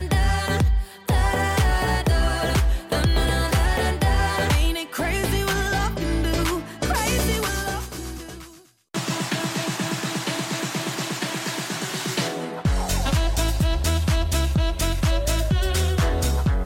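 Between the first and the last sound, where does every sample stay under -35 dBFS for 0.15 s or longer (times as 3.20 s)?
8.52–8.94 s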